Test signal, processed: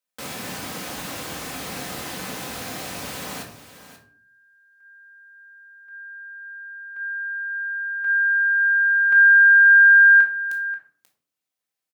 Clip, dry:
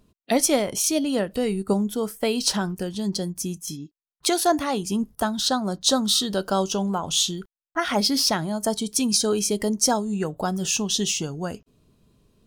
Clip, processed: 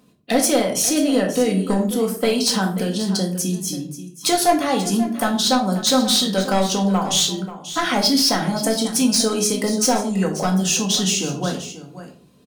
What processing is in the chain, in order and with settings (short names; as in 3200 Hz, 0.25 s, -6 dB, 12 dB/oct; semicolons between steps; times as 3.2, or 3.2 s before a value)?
Bessel high-pass 200 Hz, order 2; in parallel at +0.5 dB: compressor, threshold -31 dBFS; on the sum: hard clip -14.5 dBFS; echo 0.535 s -13.5 dB; shoebox room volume 460 m³, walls furnished, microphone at 2 m